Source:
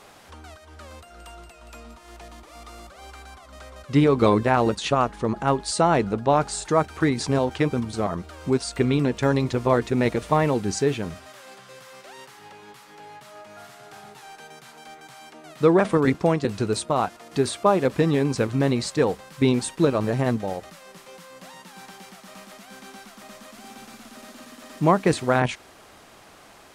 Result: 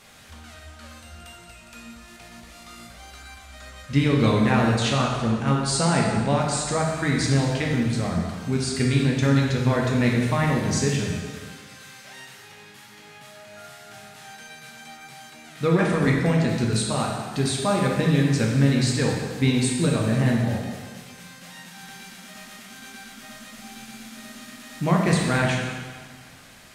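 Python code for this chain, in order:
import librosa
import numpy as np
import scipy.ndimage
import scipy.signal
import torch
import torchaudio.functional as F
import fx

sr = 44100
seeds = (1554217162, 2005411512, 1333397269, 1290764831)

y = fx.band_shelf(x, sr, hz=620.0, db=-8.5, octaves=2.3)
y = fx.rev_plate(y, sr, seeds[0], rt60_s=1.6, hf_ratio=0.9, predelay_ms=0, drr_db=-2.0)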